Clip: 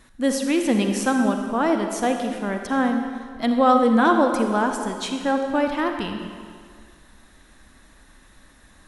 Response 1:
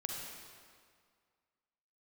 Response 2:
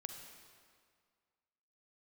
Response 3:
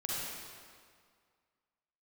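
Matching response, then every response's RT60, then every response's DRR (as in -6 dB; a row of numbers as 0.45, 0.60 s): 2; 2.0, 2.0, 2.0 s; -0.5, 4.5, -6.5 dB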